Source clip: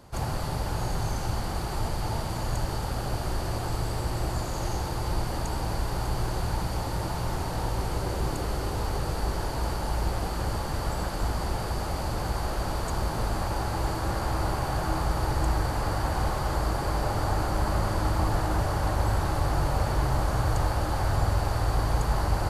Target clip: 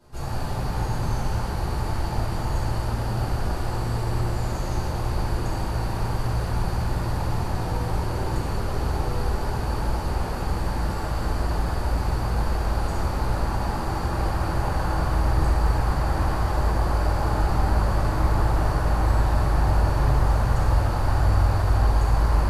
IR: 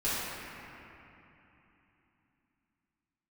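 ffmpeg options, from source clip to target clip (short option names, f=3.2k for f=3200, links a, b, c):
-filter_complex "[1:a]atrim=start_sample=2205[a];[0:a][a]afir=irnorm=-1:irlink=0,volume=-8dB"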